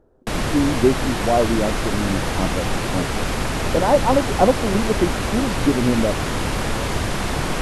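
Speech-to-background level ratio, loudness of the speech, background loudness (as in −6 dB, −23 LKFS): 2.0 dB, −21.5 LKFS, −23.5 LKFS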